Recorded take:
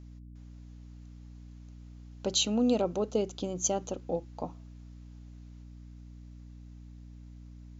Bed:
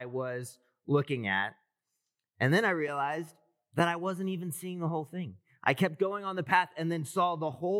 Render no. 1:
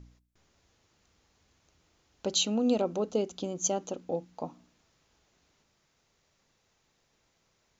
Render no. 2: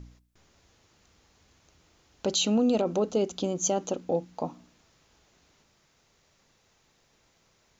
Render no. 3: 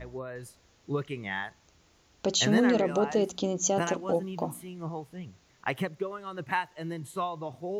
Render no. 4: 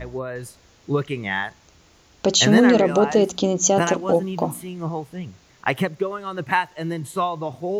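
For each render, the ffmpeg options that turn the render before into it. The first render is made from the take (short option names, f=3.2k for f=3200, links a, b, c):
-af "bandreject=f=60:t=h:w=4,bandreject=f=120:t=h:w=4,bandreject=f=180:t=h:w=4,bandreject=f=240:t=h:w=4,bandreject=f=300:t=h:w=4"
-af "acontrast=47,alimiter=limit=-16.5dB:level=0:latency=1:release=16"
-filter_complex "[1:a]volume=-4dB[a];[0:a][a]amix=inputs=2:normalize=0"
-af "volume=9dB"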